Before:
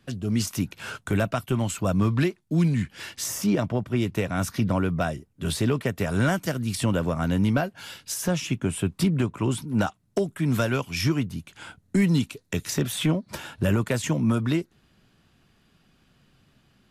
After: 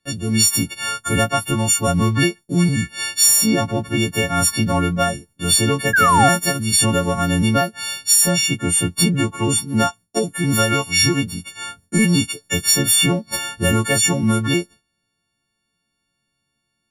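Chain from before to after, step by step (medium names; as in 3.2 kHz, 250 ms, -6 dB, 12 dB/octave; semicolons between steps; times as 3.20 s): partials quantised in pitch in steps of 4 st; painted sound fall, 5.93–6.29 s, 670–1700 Hz -19 dBFS; gate with hold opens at -45 dBFS; trim +5 dB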